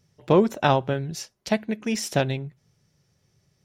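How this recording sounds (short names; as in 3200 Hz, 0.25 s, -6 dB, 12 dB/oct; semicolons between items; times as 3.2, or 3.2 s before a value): noise floor -70 dBFS; spectral tilt -5.5 dB/oct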